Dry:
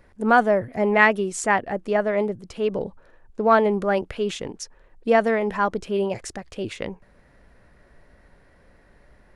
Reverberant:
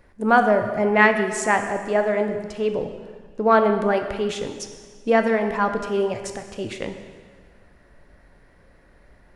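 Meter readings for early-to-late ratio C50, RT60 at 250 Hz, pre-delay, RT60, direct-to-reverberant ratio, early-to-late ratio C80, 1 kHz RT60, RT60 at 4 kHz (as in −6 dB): 8.0 dB, 1.7 s, 6 ms, 1.7 s, 6.0 dB, 9.0 dB, 1.7 s, 1.6 s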